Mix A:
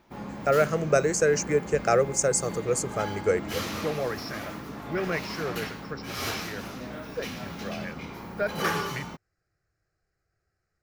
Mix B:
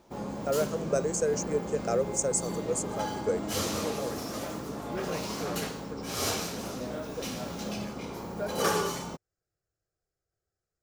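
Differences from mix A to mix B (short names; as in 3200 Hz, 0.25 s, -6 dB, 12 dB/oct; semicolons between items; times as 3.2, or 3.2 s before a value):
speech -10.5 dB; master: add graphic EQ 500/2000/8000 Hz +6/-6/+9 dB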